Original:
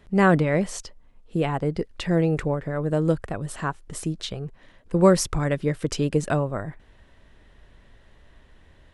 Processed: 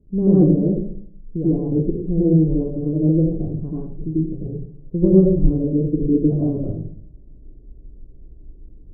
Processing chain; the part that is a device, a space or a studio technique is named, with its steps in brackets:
next room (low-pass filter 380 Hz 24 dB per octave; convolution reverb RT60 0.60 s, pre-delay 83 ms, DRR −7.5 dB)

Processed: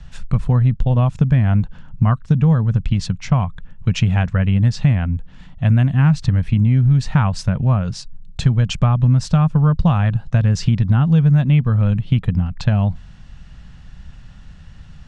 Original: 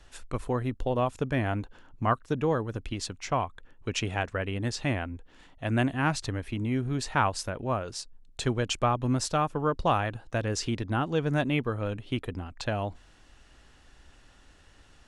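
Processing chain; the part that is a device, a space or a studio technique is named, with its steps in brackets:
jukebox (low-pass filter 6,100 Hz 12 dB per octave; low shelf with overshoot 240 Hz +11.5 dB, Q 3; downward compressor, threshold −17 dBFS, peak gain reduction 8 dB)
level +6.5 dB

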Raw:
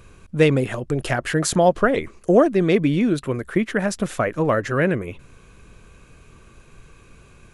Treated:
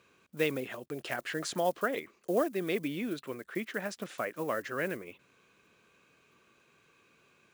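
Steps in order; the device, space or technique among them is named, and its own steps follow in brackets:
early digital voice recorder (band-pass filter 230–3,400 Hz; one scale factor per block 7 bits)
first-order pre-emphasis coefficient 0.8

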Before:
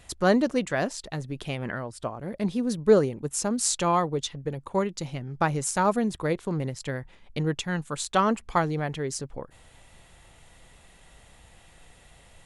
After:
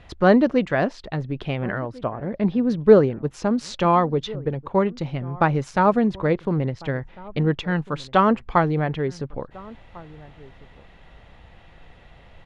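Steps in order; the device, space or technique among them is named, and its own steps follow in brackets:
shout across a valley (high-frequency loss of the air 270 metres; slap from a distant wall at 240 metres, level −21 dB)
0:02.13–0:02.69: Bessel low-pass filter 3,900 Hz
level +6.5 dB

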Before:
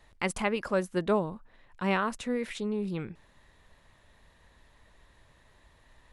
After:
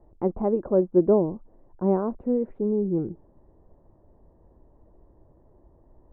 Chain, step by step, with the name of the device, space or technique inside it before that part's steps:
under water (low-pass filter 770 Hz 24 dB per octave; parametric band 340 Hz +9 dB 0.49 octaves)
level +5 dB

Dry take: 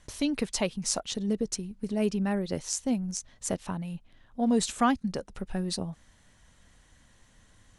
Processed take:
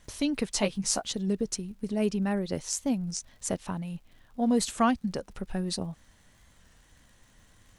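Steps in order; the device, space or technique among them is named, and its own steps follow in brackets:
0:00.53–0:01.13: double-tracking delay 15 ms −4 dB
warped LP (wow of a warped record 33 1/3 rpm, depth 100 cents; surface crackle 95 per second −51 dBFS; pink noise bed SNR 43 dB)

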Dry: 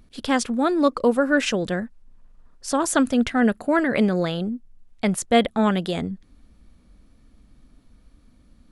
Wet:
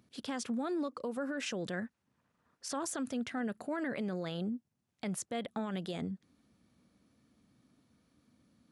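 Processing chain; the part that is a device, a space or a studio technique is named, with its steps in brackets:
broadcast voice chain (high-pass filter 100 Hz 24 dB per octave; de-essing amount 35%; downward compressor 4 to 1, threshold −20 dBFS, peak gain reduction 7.5 dB; parametric band 5,900 Hz +2.5 dB 0.53 octaves; brickwall limiter −20.5 dBFS, peak gain reduction 10.5 dB)
0:01.73–0:02.79: parametric band 1,900 Hz +5 dB 1.8 octaves
level −8.5 dB

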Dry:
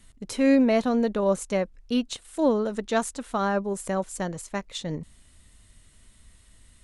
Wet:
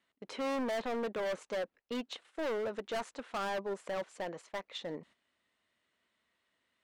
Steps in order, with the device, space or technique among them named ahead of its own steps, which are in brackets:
walkie-talkie (band-pass filter 410–2,900 Hz; hard clipping −30.5 dBFS, distortion −5 dB; noise gate −56 dBFS, range −10 dB)
level −2 dB

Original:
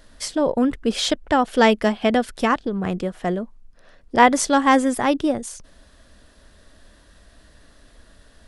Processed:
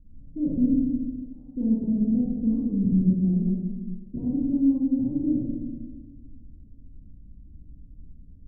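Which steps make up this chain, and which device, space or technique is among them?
0:00.83–0:01.56: first-order pre-emphasis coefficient 0.97
club heard from the street (brickwall limiter −10 dBFS, peak gain reduction 8.5 dB; low-pass filter 230 Hz 24 dB per octave; convolution reverb RT60 1.4 s, pre-delay 34 ms, DRR −4.5 dB)

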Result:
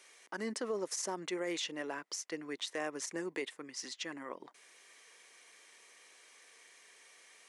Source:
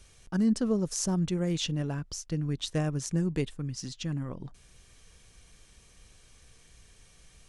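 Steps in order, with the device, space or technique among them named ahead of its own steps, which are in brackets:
laptop speaker (high-pass filter 350 Hz 24 dB per octave; parametric band 1,000 Hz +5 dB 0.48 octaves; parametric band 2,000 Hz +10.5 dB 0.43 octaves; brickwall limiter −26.5 dBFS, peak gain reduction 12 dB)
level −1 dB

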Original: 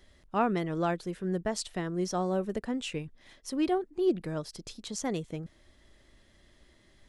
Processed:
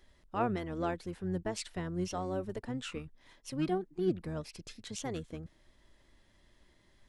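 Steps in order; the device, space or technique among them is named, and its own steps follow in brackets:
octave pedal (pitch-shifted copies added −12 semitones −6 dB)
level −5.5 dB

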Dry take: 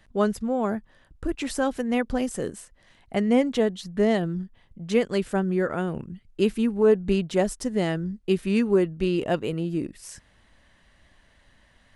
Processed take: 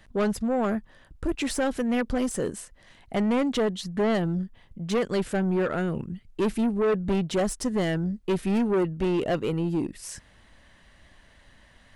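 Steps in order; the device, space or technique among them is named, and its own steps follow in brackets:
saturation between pre-emphasis and de-emphasis (high-shelf EQ 6,000 Hz +7 dB; soft clipping −23.5 dBFS, distortion −8 dB; high-shelf EQ 6,000 Hz −7 dB)
level +3.5 dB

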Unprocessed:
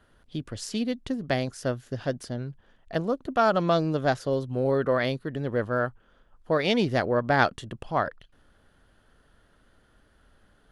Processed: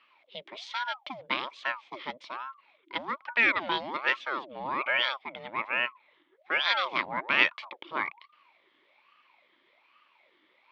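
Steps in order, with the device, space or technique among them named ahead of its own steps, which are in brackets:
voice changer toy (ring modulator whose carrier an LFO sweeps 760 Hz, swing 60%, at 1.2 Hz; loudspeaker in its box 440–4,300 Hz, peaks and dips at 450 Hz −10 dB, 740 Hz −10 dB, 1,500 Hz −4 dB, 2,200 Hz +9 dB, 3,300 Hz +10 dB)

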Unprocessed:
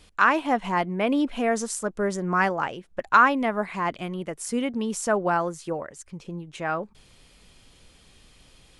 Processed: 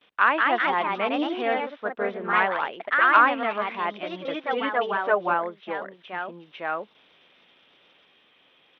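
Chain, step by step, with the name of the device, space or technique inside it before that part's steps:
0:04.13–0:05.34: comb filter 6.6 ms, depth 97%
noise gate with hold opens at −47 dBFS
low-shelf EQ 280 Hz −10 dB
delay with pitch and tempo change per echo 216 ms, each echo +2 semitones, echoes 2
Bluetooth headset (high-pass filter 250 Hz 12 dB per octave; downsampling to 8,000 Hz; SBC 64 kbit/s 32,000 Hz)

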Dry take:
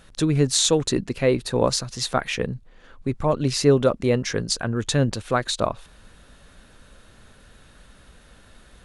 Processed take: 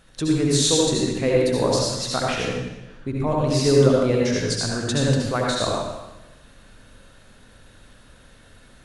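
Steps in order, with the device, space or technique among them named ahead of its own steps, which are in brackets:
bathroom (convolution reverb RT60 1.0 s, pre-delay 62 ms, DRR −3 dB)
level −4 dB

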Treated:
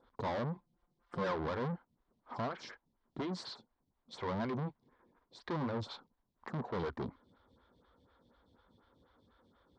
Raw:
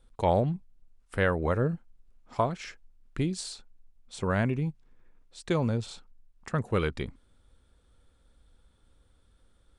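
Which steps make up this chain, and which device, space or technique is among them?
vibe pedal into a guitar amplifier (phaser with staggered stages 4.1 Hz; tube saturation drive 41 dB, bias 0.35; loudspeaker in its box 96–4,600 Hz, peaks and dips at 240 Hz +3 dB, 1,000 Hz +7 dB, 2,600 Hz −9 dB)
0:00.55–0:01.35: comb filter 5.7 ms, depth 66%
level +6 dB

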